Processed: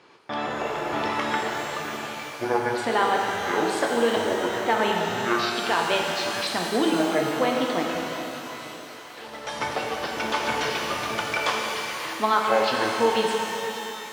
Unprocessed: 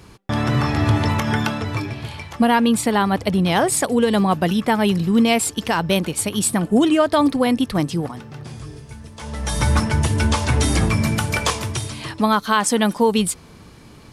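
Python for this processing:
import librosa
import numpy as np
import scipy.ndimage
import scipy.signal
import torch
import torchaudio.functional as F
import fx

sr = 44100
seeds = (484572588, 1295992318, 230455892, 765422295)

p1 = fx.pitch_trill(x, sr, semitones=-11.5, every_ms=462)
p2 = fx.bandpass_edges(p1, sr, low_hz=410.0, high_hz=3700.0)
p3 = p2 + fx.echo_thinned(p2, sr, ms=543, feedback_pct=82, hz=560.0, wet_db=-17.0, dry=0)
p4 = fx.rev_shimmer(p3, sr, seeds[0], rt60_s=2.9, semitones=12, shimmer_db=-8, drr_db=-0.5)
y = p4 * librosa.db_to_amplitude(-3.5)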